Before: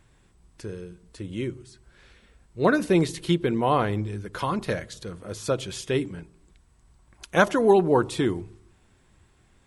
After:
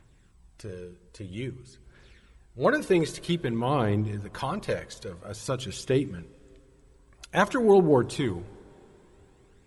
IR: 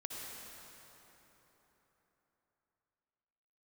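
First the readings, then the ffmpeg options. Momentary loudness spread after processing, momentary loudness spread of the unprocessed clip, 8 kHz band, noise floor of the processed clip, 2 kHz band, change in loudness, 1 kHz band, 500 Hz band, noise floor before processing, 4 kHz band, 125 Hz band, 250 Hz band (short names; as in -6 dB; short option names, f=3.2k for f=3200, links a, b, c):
20 LU, 19 LU, -2.0 dB, -59 dBFS, -2.5 dB, -2.0 dB, -3.5 dB, -1.5 dB, -61 dBFS, -2.0 dB, -1.0 dB, -2.0 dB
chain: -filter_complex "[0:a]aphaser=in_gain=1:out_gain=1:delay=2.4:decay=0.44:speed=0.51:type=triangular,asplit=2[a][b];[1:a]atrim=start_sample=2205[c];[b][c]afir=irnorm=-1:irlink=0,volume=-21.5dB[d];[a][d]amix=inputs=2:normalize=0,volume=-3.5dB"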